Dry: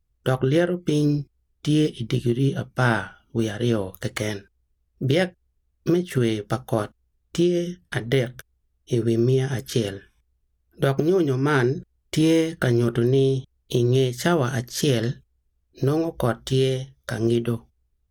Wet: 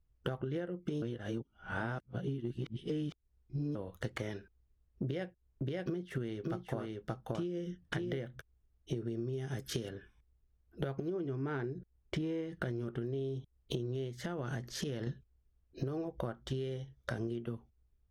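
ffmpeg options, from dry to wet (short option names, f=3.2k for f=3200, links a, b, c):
-filter_complex "[0:a]asettb=1/sr,asplit=3[a][b][c];[a]atrim=end=5.034[d];[b]atrim=start=5.03:end=8.18,asetpts=PTS-STARTPTS,afade=t=in:d=0.004:c=qsin,afade=t=out:st=3.146:d=0.004:c=qsin,aecho=1:1:578:0.562,atrim=end_sample=138915[e];[c]atrim=start=8.176[f];[d][e]acrossfade=d=0.004:c1=hsin:c2=qsin[g];[g][f]acrossfade=d=0.004:c1=qsin:c2=hsin,asettb=1/sr,asplit=3[h][i][j];[h]atrim=end=9.334[k];[i]atrim=start=9.33:end=9.89,asetpts=PTS-STARTPTS,afade=t=in:d=0.004:c=qsin,afade=t=out:st=0.556:d=0.004:c=qsin,aemphasis=mode=production:type=cd[l];[j]atrim=start=9.886[m];[k][l]acrossfade=d=0.004:c1=hsin:c2=qsin[n];[n][m]acrossfade=d=0.004:c1=qsin:c2=hsin,asettb=1/sr,asplit=3[o][p][q];[o]atrim=end=11.104[r];[p]atrim=start=11.1:end=12.52,asetpts=PTS-STARTPTS,afade=t=in:d=0.004:c=qsin,afade=t=out:st=1.416:d=0.004:c=qsin,lowpass=f=3.4k:p=1[s];[q]atrim=start=12.516[t];[r][s]acrossfade=d=0.004:c1=hsin:c2=qsin[u];[u][t]acrossfade=d=0.004:c1=qsin:c2=hsin,asettb=1/sr,asplit=3[v][w][x];[v]atrim=end=14.114[y];[w]atrim=start=14.11:end=15.07,asetpts=PTS-STARTPTS,afade=t=in:d=0.004:c=qsin,afade=t=out:st=0.956:d=0.004:c=qsin,acompressor=threshold=-26dB:ratio=6:attack=3.2:release=140:knee=1:detection=peak[z];[x]atrim=start=15.066[aa];[y][z]acrossfade=d=0.004:c1=hsin:c2=qsin[ab];[ab][aa]acrossfade=d=0.004:c1=qsin:c2=hsin,asplit=3[ac][ad][ae];[ac]atrim=end=1.022[af];[ad]atrim=start=1.018:end=3.752,asetpts=PTS-STARTPTS,areverse[ag];[ae]atrim=start=3.748[ah];[af][ag]acrossfade=d=0.004:c1=hsin:c2=hsin[ai];[ai][ah]acrossfade=d=0.004:c1=hsin:c2=hsin,lowpass=f=2.1k:p=1,acompressor=threshold=-32dB:ratio=12,volume=-2dB"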